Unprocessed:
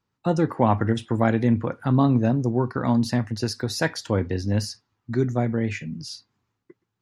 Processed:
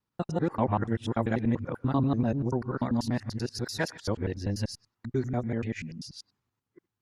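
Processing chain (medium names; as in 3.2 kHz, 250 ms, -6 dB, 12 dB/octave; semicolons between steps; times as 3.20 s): time reversed locally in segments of 97 ms; trim -6.5 dB; Opus 64 kbps 48 kHz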